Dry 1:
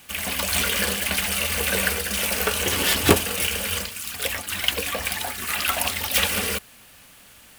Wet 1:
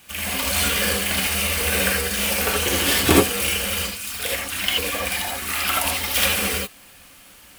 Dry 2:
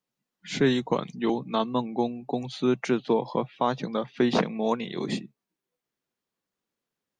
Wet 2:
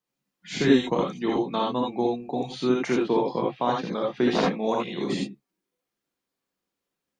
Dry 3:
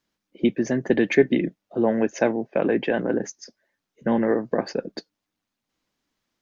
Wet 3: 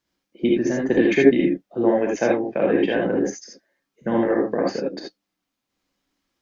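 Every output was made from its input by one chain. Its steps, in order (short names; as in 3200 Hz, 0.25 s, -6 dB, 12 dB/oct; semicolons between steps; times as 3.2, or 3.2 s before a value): non-linear reverb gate 0.1 s rising, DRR -2 dB; gain -2 dB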